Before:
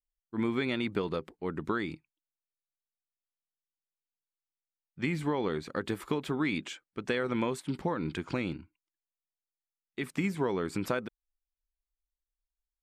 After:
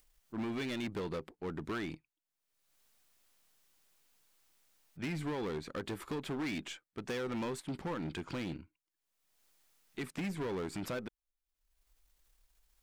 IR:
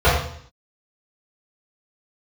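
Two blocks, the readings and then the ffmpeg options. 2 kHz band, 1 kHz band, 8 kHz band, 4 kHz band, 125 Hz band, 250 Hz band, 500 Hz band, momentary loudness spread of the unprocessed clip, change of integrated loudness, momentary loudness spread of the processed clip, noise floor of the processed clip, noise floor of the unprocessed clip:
−7.0 dB, −7.0 dB, −2.0 dB, −4.0 dB, −5.5 dB, −6.0 dB, −6.5 dB, 9 LU, −6.0 dB, 8 LU, below −85 dBFS, below −85 dBFS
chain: -af "aeval=exprs='if(lt(val(0),0),0.708*val(0),val(0))':channel_layout=same,acompressor=mode=upward:threshold=-49dB:ratio=2.5,asoftclip=type=hard:threshold=-32dB,volume=-1.5dB"

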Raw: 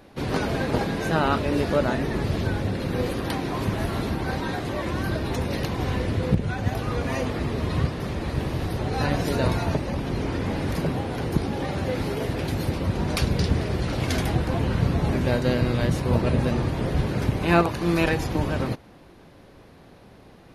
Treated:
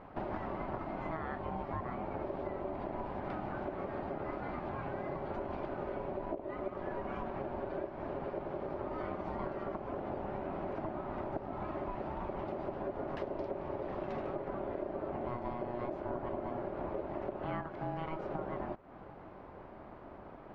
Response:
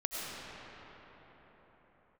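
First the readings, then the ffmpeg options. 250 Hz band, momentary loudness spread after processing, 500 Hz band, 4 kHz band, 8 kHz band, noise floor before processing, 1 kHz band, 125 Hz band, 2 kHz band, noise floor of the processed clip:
−15.5 dB, 2 LU, −10.5 dB, below −25 dB, below −40 dB, −49 dBFS, −9.0 dB, −22.0 dB, −18.0 dB, −51 dBFS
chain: -af "lowpass=1400,acompressor=threshold=-36dB:ratio=6,aeval=exprs='val(0)*sin(2*PI*480*n/s)':channel_layout=same,volume=2dB"

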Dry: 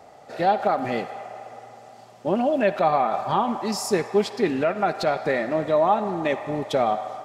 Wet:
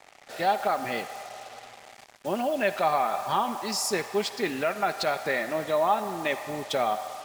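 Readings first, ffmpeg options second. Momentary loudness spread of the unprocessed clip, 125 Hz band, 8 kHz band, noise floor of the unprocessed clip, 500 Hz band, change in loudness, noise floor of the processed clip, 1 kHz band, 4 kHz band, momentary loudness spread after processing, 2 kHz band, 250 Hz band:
11 LU, −8.5 dB, +2.5 dB, −48 dBFS, −5.5 dB, −4.0 dB, −53 dBFS, −3.5 dB, +1.5 dB, 14 LU, 0.0 dB, −8.0 dB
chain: -af "acrusher=bits=6:mix=0:aa=0.5,tiltshelf=frequency=850:gain=-5.5,volume=-3.5dB"

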